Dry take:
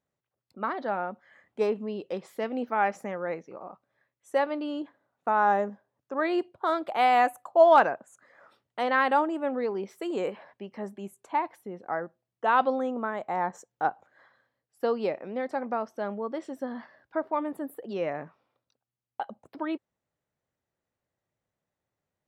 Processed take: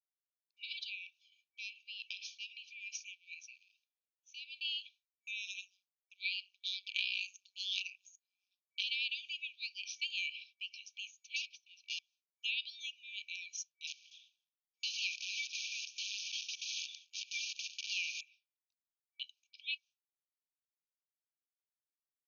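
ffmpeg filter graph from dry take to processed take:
ffmpeg -i in.wav -filter_complex "[0:a]asettb=1/sr,asplit=3[link_01][link_02][link_03];[link_01]atrim=end=1.064[link_04];[link_02]atrim=start=1.06:end=4.65,asetpts=PTS-STARTPTS,afade=type=in:duration=0.004:curve=qsin,afade=type=out:start_time=3.586:duration=0.004:curve=qsin,acompressor=threshold=-36dB:ratio=8:attack=3.2:release=140:knee=1:detection=peak,equalizer=frequency=860:width=1:gain=5.5[link_05];[link_03]atrim=start=4.646[link_06];[link_04][link_05]acrossfade=duration=0.004:curve1=hsin:curve2=qsin[link_07];[link_07][link_06]acrossfade=duration=0.004:curve1=qsin:curve2=hsin,asettb=1/sr,asplit=3[link_08][link_09][link_10];[link_08]atrim=end=5.434[link_11];[link_09]atrim=start=5.43:end=8.84,asetpts=PTS-STARTPTS,afade=type=in:duration=0.004:curve=qsin,afade=type=out:start_time=3.406:duration=0.004:curve=qsin,equalizer=frequency=5900:width_type=o:width=0.7:gain=3.5,tremolo=f=190:d=0.974[link_12];[link_10]atrim=start=8.836[link_13];[link_11][link_12]acrossfade=duration=0.004:curve1=hsin:curve2=qsin[link_14];[link_14][link_13]acrossfade=duration=0.004:curve1=qsin:curve2=hsin,asettb=1/sr,asplit=3[link_15][link_16][link_17];[link_15]atrim=end=11.364[link_18];[link_16]atrim=start=11.36:end=11.99,asetpts=PTS-STARTPTS,afade=type=in:duration=0.004:curve=qsin,afade=type=out:start_time=0.626:duration=0.004:curve=qsin,aeval=exprs='(tanh(70.8*val(0)+0.4)-tanh(0.4))/70.8':channel_layout=same,asuperstop=centerf=1000:order=4:qfactor=1.4[link_19];[link_17]atrim=start=11.986[link_20];[link_18][link_19]acrossfade=duration=0.004:curve1=hsin:curve2=qsin[link_21];[link_21][link_20]acrossfade=duration=0.004:curve1=qsin:curve2=hsin,asettb=1/sr,asplit=3[link_22][link_23][link_24];[link_22]atrim=end=13.874[link_25];[link_23]atrim=start=13.87:end=18.21,asetpts=PTS-STARTPTS,afade=type=in:duration=0.004:curve=qsin,afade=type=out:start_time=4.336:duration=0.004:curve=qsin,equalizer=frequency=1800:width=4.2:gain=9,acrusher=bits=8:dc=4:mix=0:aa=0.000001,aecho=1:1:241:0.126,atrim=end_sample=191394[link_26];[link_24]atrim=start=18.206[link_27];[link_25][link_26]acrossfade=duration=0.004:curve1=hsin:curve2=qsin[link_28];[link_28][link_27]acrossfade=duration=0.004:curve1=qsin:curve2=hsin,agate=range=-33dB:threshold=-46dB:ratio=3:detection=peak,afftfilt=real='re*between(b*sr/4096,2300,6700)':imag='im*between(b*sr/4096,2300,6700)':win_size=4096:overlap=0.75,acompressor=threshold=-49dB:ratio=3,volume=14dB" out.wav

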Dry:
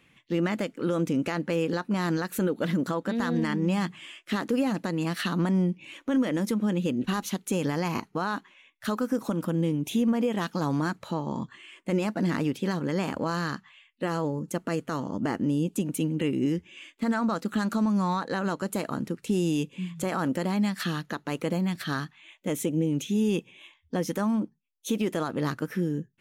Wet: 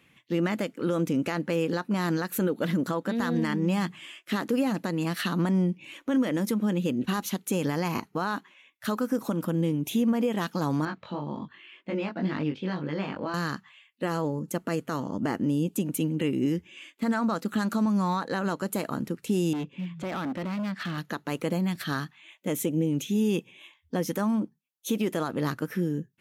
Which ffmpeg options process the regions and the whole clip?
ffmpeg -i in.wav -filter_complex "[0:a]asettb=1/sr,asplit=3[link_01][link_02][link_03];[link_01]atrim=end=10.854[link_04];[link_02]atrim=start=10.85:end=13.34,asetpts=PTS-STARTPTS,afade=type=in:duration=0.004:curve=qsin,afade=type=out:start_time=2.486:duration=0.004:curve=qsin,lowpass=frequency=3700:width=0.5412,lowpass=frequency=3700:width=1.3066,aemphasis=mode=production:type=50fm,flanger=delay=19.5:depth=2.3:speed=1.9[link_05];[link_03]atrim=start=13.336[link_06];[link_04][link_05]acrossfade=duration=0.004:curve1=hsin:curve2=qsin[link_07];[link_07][link_06]acrossfade=duration=0.004:curve1=qsin:curve2=hsin,asettb=1/sr,asplit=3[link_08][link_09][link_10];[link_08]atrim=end=19.534[link_11];[link_09]atrim=start=19.53:end=20.98,asetpts=PTS-STARTPTS,afade=type=in:duration=0.004:curve=qsin,afade=type=out:start_time=1.446:duration=0.004:curve=qsin,lowpass=3200,bandreject=frequency=480:width=8.1,volume=28.5dB,asoftclip=hard,volume=-28.5dB[link_12];[link_10]atrim=start=20.976[link_13];[link_11][link_12]acrossfade=duration=0.004:curve1=hsin:curve2=qsin[link_14];[link_14][link_13]acrossfade=duration=0.004:curve1=qsin:curve2=hsin,highpass=55,equalizer=frequency=12000:width=4.5:gain=8" out.wav

